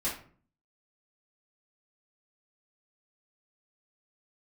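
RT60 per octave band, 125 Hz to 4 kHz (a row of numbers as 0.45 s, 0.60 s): 0.75 s, 0.65 s, 0.50 s, 0.45 s, 0.40 s, 0.30 s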